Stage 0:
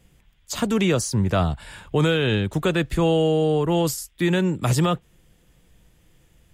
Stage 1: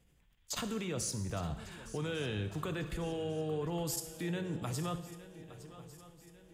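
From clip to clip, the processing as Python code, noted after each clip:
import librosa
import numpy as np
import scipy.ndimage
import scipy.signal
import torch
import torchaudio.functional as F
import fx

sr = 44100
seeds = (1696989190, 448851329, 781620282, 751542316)

y = fx.level_steps(x, sr, step_db=16)
y = fx.echo_swing(y, sr, ms=1149, ratio=3, feedback_pct=45, wet_db=-16)
y = fx.rev_gated(y, sr, seeds[0], gate_ms=340, shape='falling', drr_db=8.0)
y = y * librosa.db_to_amplitude(-5.0)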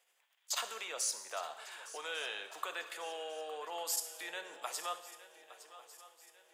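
y = scipy.signal.sosfilt(scipy.signal.butter(4, 630.0, 'highpass', fs=sr, output='sos'), x)
y = y * librosa.db_to_amplitude(3.0)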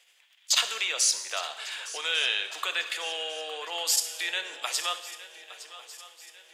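y = fx.weighting(x, sr, curve='D')
y = y * librosa.db_to_amplitude(4.5)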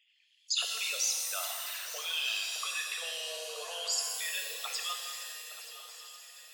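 y = fx.envelope_sharpen(x, sr, power=3.0)
y = fx.echo_swing(y, sr, ms=1236, ratio=3, feedback_pct=36, wet_db=-16.0)
y = fx.rev_shimmer(y, sr, seeds[1], rt60_s=1.8, semitones=7, shimmer_db=-2, drr_db=3.5)
y = y * librosa.db_to_amplitude(-8.0)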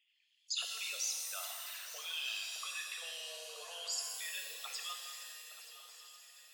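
y = fx.highpass(x, sr, hz=530.0, slope=6)
y = y * librosa.db_to_amplitude(-6.5)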